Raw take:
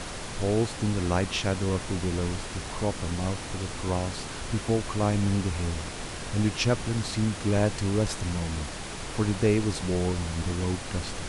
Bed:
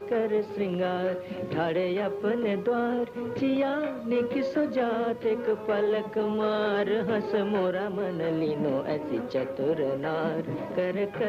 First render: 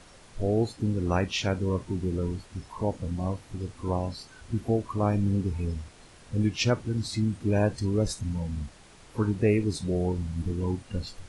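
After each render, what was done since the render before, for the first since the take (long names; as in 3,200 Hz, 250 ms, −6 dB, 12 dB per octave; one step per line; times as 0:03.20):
noise reduction from a noise print 16 dB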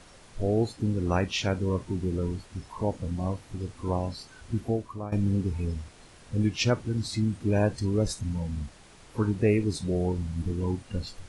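0:04.58–0:05.12: fade out, to −15 dB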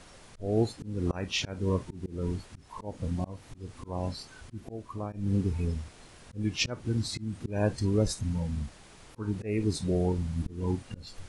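volume swells 235 ms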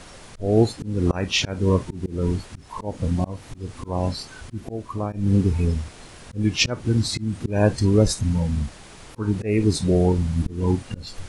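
level +9 dB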